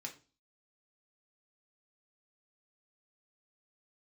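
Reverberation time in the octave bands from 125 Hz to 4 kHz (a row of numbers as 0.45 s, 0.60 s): 0.45 s, 0.45 s, 0.35 s, 0.30 s, 0.30 s, 0.35 s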